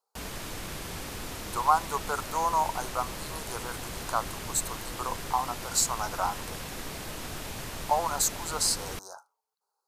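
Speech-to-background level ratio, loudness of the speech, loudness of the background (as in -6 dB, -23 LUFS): 8.0 dB, -30.0 LUFS, -38.0 LUFS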